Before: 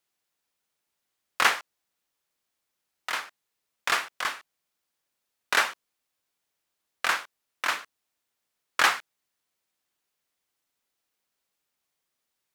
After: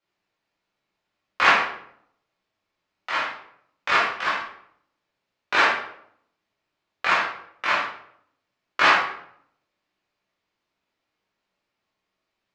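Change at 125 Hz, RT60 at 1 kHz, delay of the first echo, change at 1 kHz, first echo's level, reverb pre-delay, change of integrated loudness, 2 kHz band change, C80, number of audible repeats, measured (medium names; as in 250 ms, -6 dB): no reading, 0.65 s, no echo, +7.0 dB, no echo, 11 ms, +5.0 dB, +5.5 dB, 7.5 dB, no echo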